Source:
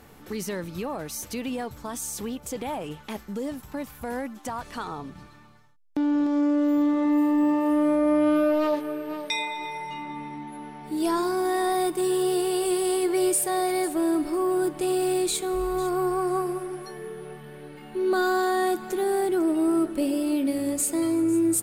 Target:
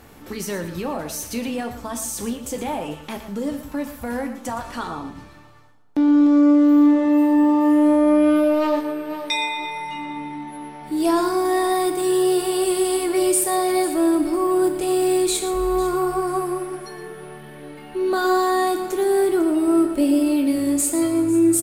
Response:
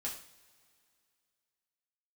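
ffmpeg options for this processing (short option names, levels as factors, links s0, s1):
-filter_complex "[0:a]aecho=1:1:117:0.251,asplit=2[s0][s1];[1:a]atrim=start_sample=2205[s2];[s1][s2]afir=irnorm=-1:irlink=0,volume=0.891[s3];[s0][s3]amix=inputs=2:normalize=0"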